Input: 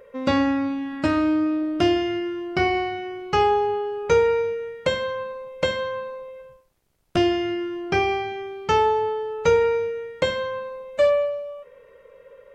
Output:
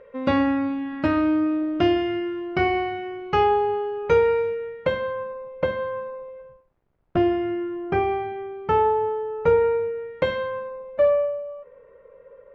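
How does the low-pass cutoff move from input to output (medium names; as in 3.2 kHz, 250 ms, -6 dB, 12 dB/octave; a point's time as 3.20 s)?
4.50 s 2.9 kHz
5.28 s 1.5 kHz
9.95 s 1.5 kHz
10.35 s 2.8 kHz
10.81 s 1.4 kHz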